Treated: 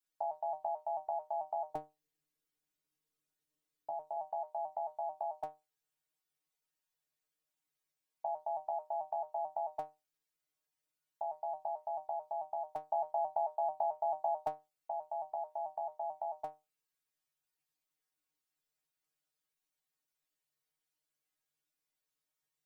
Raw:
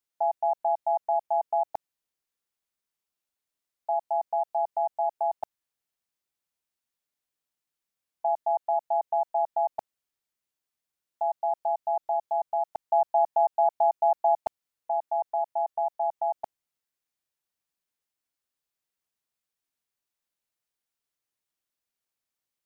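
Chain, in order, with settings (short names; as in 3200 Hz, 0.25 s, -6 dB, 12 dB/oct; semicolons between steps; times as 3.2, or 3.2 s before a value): metallic resonator 150 Hz, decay 0.24 s, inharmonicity 0.002; 1.7–4.17 resonant low shelf 500 Hz +7 dB, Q 1.5; gain +8 dB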